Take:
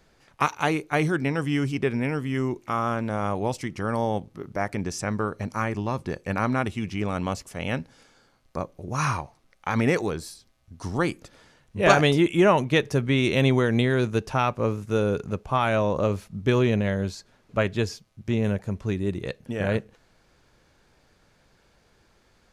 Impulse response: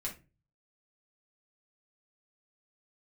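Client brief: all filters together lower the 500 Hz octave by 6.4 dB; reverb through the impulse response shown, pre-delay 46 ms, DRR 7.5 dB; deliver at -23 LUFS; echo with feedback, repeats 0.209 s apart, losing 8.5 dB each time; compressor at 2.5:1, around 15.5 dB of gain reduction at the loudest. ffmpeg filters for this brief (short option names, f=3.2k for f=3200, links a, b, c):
-filter_complex "[0:a]equalizer=f=500:t=o:g=-8.5,acompressor=threshold=-38dB:ratio=2.5,aecho=1:1:209|418|627|836:0.376|0.143|0.0543|0.0206,asplit=2[a][b];[1:a]atrim=start_sample=2205,adelay=46[c];[b][c]afir=irnorm=-1:irlink=0,volume=-8dB[d];[a][d]amix=inputs=2:normalize=0,volume=14dB"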